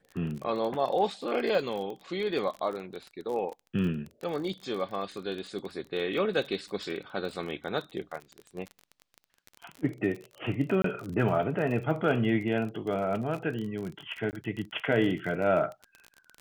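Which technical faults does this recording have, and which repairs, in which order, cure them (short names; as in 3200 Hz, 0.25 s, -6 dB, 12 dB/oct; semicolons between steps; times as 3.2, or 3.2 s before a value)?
crackle 30/s -34 dBFS
10.82–10.84 gap 23 ms
14.31–14.33 gap 19 ms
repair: de-click; interpolate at 10.82, 23 ms; interpolate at 14.31, 19 ms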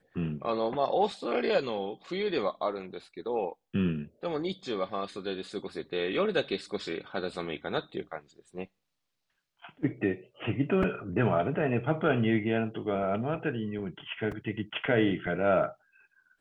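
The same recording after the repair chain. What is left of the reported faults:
none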